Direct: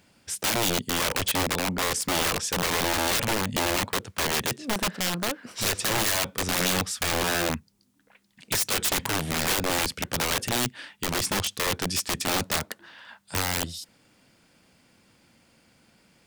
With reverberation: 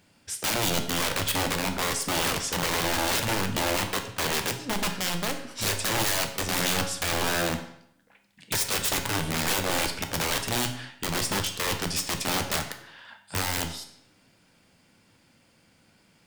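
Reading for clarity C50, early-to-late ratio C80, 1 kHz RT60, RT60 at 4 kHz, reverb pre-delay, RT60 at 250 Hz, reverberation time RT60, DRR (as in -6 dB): 9.0 dB, 12.0 dB, 0.70 s, 0.60 s, 7 ms, 0.70 s, 0.70 s, 5.0 dB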